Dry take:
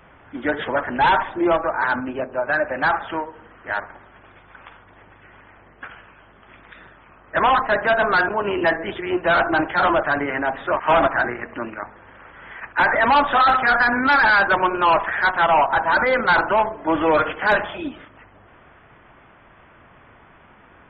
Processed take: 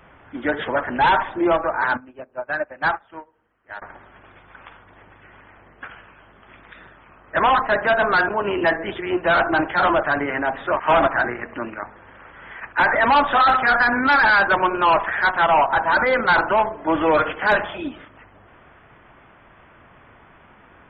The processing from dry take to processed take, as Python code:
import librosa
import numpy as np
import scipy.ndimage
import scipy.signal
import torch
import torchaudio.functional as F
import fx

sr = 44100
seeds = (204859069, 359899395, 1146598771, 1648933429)

y = fx.upward_expand(x, sr, threshold_db=-31.0, expansion=2.5, at=(1.97, 3.82))